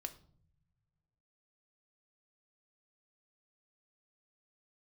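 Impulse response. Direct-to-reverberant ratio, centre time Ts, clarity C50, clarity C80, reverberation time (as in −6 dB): 6.5 dB, 6 ms, 15.0 dB, 19.0 dB, non-exponential decay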